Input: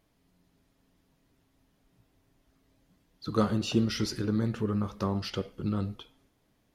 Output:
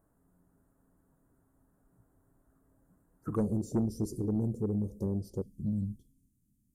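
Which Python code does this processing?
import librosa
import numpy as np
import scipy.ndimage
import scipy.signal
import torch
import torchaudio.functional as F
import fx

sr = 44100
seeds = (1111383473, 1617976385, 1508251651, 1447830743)

y = fx.cheby1_bandstop(x, sr, low_hz=fx.steps((0.0, 1500.0), (3.35, 460.0), (5.42, 230.0)), high_hz=7900.0, order=3)
y = 10.0 ** (-22.0 / 20.0) * np.tanh(y / 10.0 ** (-22.0 / 20.0))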